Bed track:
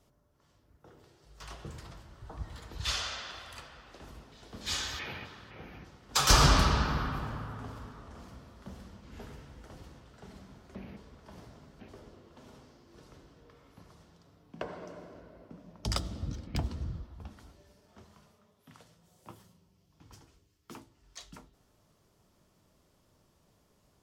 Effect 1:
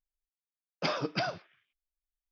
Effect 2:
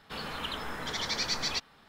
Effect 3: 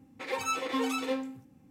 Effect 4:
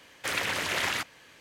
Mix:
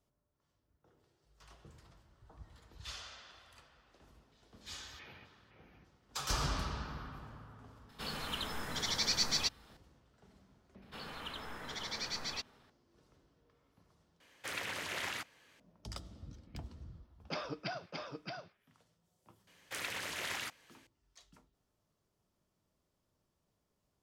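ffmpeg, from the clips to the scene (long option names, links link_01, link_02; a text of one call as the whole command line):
ffmpeg -i bed.wav -i cue0.wav -i cue1.wav -i cue2.wav -i cue3.wav -filter_complex "[2:a]asplit=2[link_01][link_02];[4:a]asplit=2[link_03][link_04];[0:a]volume=-13.5dB[link_05];[link_01]bass=frequency=250:gain=4,treble=frequency=4000:gain=8[link_06];[1:a]aecho=1:1:622:0.631[link_07];[link_04]highshelf=frequency=4000:gain=4.5[link_08];[link_05]asplit=2[link_09][link_10];[link_09]atrim=end=14.204[link_11];[link_03]atrim=end=1.4,asetpts=PTS-STARTPTS,volume=-10.5dB[link_12];[link_10]atrim=start=15.596[link_13];[link_06]atrim=end=1.88,asetpts=PTS-STARTPTS,volume=-5dB,afade=type=in:duration=0.004:curve=hsin,afade=type=out:start_time=1.876:duration=0.004:curve=hsin,adelay=7890[link_14];[link_02]atrim=end=1.88,asetpts=PTS-STARTPTS,volume=-8.5dB,afade=type=in:duration=0.004:curve=hsin,afade=type=out:start_time=1.876:duration=0.004:curve=hsin,adelay=477162S[link_15];[link_07]atrim=end=2.31,asetpts=PTS-STARTPTS,volume=-9dB,afade=type=in:duration=0.004:curve=hsin,afade=type=out:start_time=2.306:duration=0.004:curve=hsin,adelay=16480[link_16];[link_08]atrim=end=1.4,asetpts=PTS-STARTPTS,volume=-12dB,afade=type=in:duration=0.004:curve=hsin,afade=type=out:start_time=1.396:duration=0.004:curve=hsin,adelay=19470[link_17];[link_11][link_12]acrossfade=duration=0.004:curve1=hsin:curve2=hsin[link_18];[link_18][link_13]acrossfade=duration=0.004:curve1=hsin:curve2=hsin[link_19];[link_19][link_14][link_15][link_16][link_17]amix=inputs=5:normalize=0" out.wav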